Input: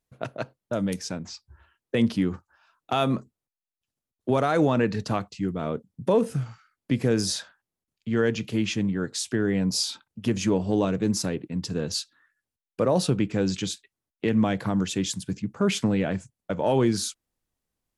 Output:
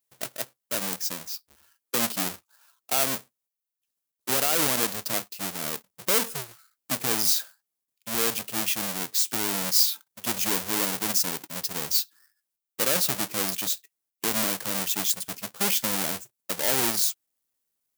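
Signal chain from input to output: half-waves squared off; RIAA curve recording; gain -8 dB

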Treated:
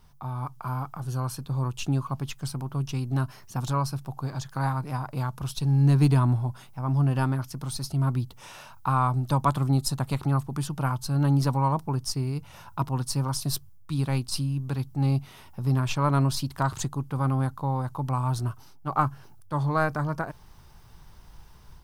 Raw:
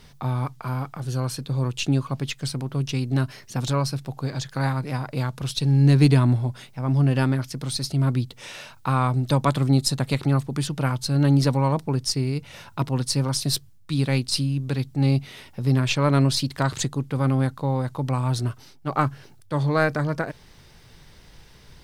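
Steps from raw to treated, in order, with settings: ten-band EQ 125 Hz -4 dB, 250 Hz -6 dB, 500 Hz -10 dB, 1000 Hz +4 dB, 2000 Hz -11 dB, 4000 Hz -9 dB, 8000 Hz -6 dB; AGC gain up to 6 dB; gain -3.5 dB

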